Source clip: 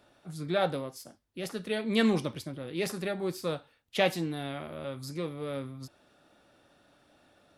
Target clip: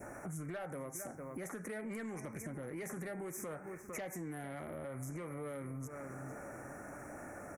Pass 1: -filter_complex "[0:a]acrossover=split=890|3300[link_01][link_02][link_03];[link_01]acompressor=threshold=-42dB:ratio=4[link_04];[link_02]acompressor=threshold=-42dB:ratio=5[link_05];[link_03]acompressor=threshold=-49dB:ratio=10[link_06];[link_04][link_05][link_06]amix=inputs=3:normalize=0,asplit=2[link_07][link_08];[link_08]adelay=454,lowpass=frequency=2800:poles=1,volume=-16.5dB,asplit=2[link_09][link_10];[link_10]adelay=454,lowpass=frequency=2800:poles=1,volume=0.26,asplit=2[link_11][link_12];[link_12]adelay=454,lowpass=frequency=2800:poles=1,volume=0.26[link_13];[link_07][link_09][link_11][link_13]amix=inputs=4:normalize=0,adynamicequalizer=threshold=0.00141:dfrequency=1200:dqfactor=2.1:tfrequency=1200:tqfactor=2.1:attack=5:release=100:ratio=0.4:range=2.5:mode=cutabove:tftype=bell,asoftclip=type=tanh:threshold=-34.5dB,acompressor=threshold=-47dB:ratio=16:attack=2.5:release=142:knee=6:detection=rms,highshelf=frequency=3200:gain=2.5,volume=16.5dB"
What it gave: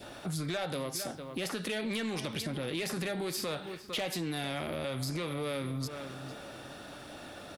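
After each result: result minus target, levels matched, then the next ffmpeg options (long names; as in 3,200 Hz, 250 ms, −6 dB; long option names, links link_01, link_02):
4,000 Hz band +18.5 dB; downward compressor: peak gain reduction −8 dB
-filter_complex "[0:a]acrossover=split=890|3300[link_01][link_02][link_03];[link_01]acompressor=threshold=-42dB:ratio=4[link_04];[link_02]acompressor=threshold=-42dB:ratio=5[link_05];[link_03]acompressor=threshold=-49dB:ratio=10[link_06];[link_04][link_05][link_06]amix=inputs=3:normalize=0,asplit=2[link_07][link_08];[link_08]adelay=454,lowpass=frequency=2800:poles=1,volume=-16.5dB,asplit=2[link_09][link_10];[link_10]adelay=454,lowpass=frequency=2800:poles=1,volume=0.26,asplit=2[link_11][link_12];[link_12]adelay=454,lowpass=frequency=2800:poles=1,volume=0.26[link_13];[link_07][link_09][link_11][link_13]amix=inputs=4:normalize=0,adynamicequalizer=threshold=0.00141:dfrequency=1200:dqfactor=2.1:tfrequency=1200:tqfactor=2.1:attack=5:release=100:ratio=0.4:range=2.5:mode=cutabove:tftype=bell,asuperstop=centerf=3700:order=12:qfactor=1,asoftclip=type=tanh:threshold=-34.5dB,acompressor=threshold=-47dB:ratio=16:attack=2.5:release=142:knee=6:detection=rms,highshelf=frequency=3200:gain=2.5,volume=16.5dB"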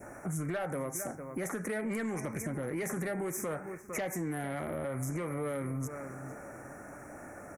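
downward compressor: peak gain reduction −8 dB
-filter_complex "[0:a]acrossover=split=890|3300[link_01][link_02][link_03];[link_01]acompressor=threshold=-42dB:ratio=4[link_04];[link_02]acompressor=threshold=-42dB:ratio=5[link_05];[link_03]acompressor=threshold=-49dB:ratio=10[link_06];[link_04][link_05][link_06]amix=inputs=3:normalize=0,asplit=2[link_07][link_08];[link_08]adelay=454,lowpass=frequency=2800:poles=1,volume=-16.5dB,asplit=2[link_09][link_10];[link_10]adelay=454,lowpass=frequency=2800:poles=1,volume=0.26,asplit=2[link_11][link_12];[link_12]adelay=454,lowpass=frequency=2800:poles=1,volume=0.26[link_13];[link_07][link_09][link_11][link_13]amix=inputs=4:normalize=0,adynamicequalizer=threshold=0.00141:dfrequency=1200:dqfactor=2.1:tfrequency=1200:tqfactor=2.1:attack=5:release=100:ratio=0.4:range=2.5:mode=cutabove:tftype=bell,asuperstop=centerf=3700:order=12:qfactor=1,asoftclip=type=tanh:threshold=-34.5dB,acompressor=threshold=-55.5dB:ratio=16:attack=2.5:release=142:knee=6:detection=rms,highshelf=frequency=3200:gain=2.5,volume=16.5dB"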